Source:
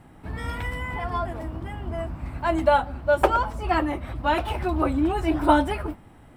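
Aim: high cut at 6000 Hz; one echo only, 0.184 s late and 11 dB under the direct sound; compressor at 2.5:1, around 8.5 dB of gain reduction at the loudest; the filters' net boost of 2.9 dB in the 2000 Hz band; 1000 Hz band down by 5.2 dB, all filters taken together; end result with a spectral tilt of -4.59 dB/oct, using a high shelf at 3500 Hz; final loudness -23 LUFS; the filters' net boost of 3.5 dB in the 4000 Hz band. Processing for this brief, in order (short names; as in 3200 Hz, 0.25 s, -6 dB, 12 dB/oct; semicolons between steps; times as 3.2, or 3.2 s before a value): LPF 6000 Hz; bell 1000 Hz -8.5 dB; bell 2000 Hz +8 dB; high shelf 3500 Hz -6 dB; bell 4000 Hz +6 dB; compressor 2.5:1, threshold -29 dBFS; echo 0.184 s -11 dB; gain +8.5 dB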